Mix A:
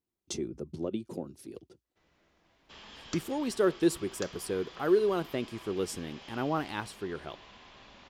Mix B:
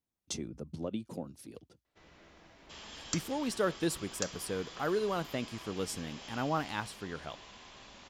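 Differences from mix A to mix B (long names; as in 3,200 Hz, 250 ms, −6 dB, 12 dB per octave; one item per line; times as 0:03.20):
speech: add parametric band 370 Hz −11 dB 0.4 octaves
first sound +11.0 dB
second sound: remove low-pass filter 4,200 Hz 12 dB per octave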